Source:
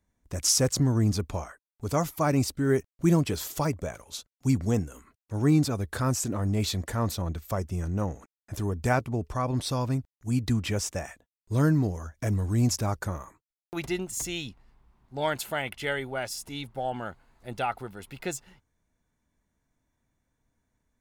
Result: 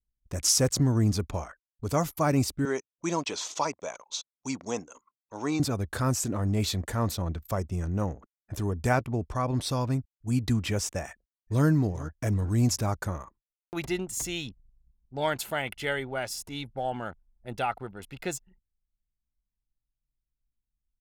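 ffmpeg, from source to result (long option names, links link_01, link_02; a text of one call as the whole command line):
ffmpeg -i in.wav -filter_complex "[0:a]asettb=1/sr,asplit=3[link_01][link_02][link_03];[link_01]atrim=end=2.654[link_04];[link_02]atrim=start=2.65:end=5.6,asetpts=PTS-STARTPTS,afade=type=in:duration=0.004:curve=qsin,afade=type=out:start_time=2.946:duration=0.004:curve=qsin,highpass=380,equalizer=frequency=380:width_type=q:width=4:gain=-4,equalizer=frequency=970:width_type=q:width=4:gain=7,equalizer=frequency=1700:width_type=q:width=4:gain=-3,equalizer=frequency=2500:width_type=q:width=4:gain=3,equalizer=frequency=3700:width_type=q:width=4:gain=5,equalizer=frequency=6200:width_type=q:width=4:gain=8,lowpass=frequency=7200:width=0.5412,lowpass=frequency=7200:width=1.3066[link_05];[link_03]atrim=start=5.596[link_06];[link_04][link_05]acrossfade=duration=0.004:curve1=hsin:curve2=qsin[link_07];[link_07][link_06]acrossfade=duration=0.004:curve1=qsin:curve2=hsin,asplit=2[link_08][link_09];[link_09]afade=type=in:start_time=11.06:duration=0.01,afade=type=out:start_time=11.67:duration=0.01,aecho=0:1:410|820|1230:0.149624|0.0523682|0.0183289[link_10];[link_08][link_10]amix=inputs=2:normalize=0,anlmdn=0.0158" out.wav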